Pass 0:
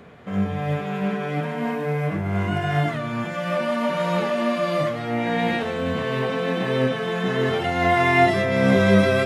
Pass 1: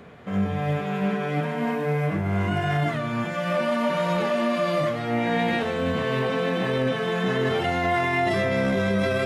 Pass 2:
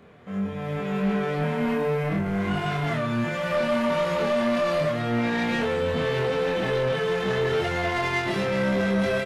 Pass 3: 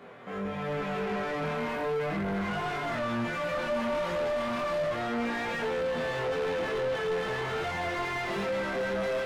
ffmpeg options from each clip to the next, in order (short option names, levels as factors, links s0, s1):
-af "alimiter=limit=0.168:level=0:latency=1:release=10"
-filter_complex "[0:a]dynaudnorm=f=540:g=3:m=2.51,asoftclip=type=tanh:threshold=0.178,asplit=2[s0][s1];[s1]adelay=25,volume=0.794[s2];[s0][s2]amix=inputs=2:normalize=0,volume=0.422"
-filter_complex "[0:a]crystalizer=i=1.5:c=0,flanger=delay=17:depth=7.2:speed=0.33,asplit=2[s0][s1];[s1]highpass=f=720:p=1,volume=15.8,asoftclip=type=tanh:threshold=0.133[s2];[s0][s2]amix=inputs=2:normalize=0,lowpass=f=1200:p=1,volume=0.501,volume=0.531"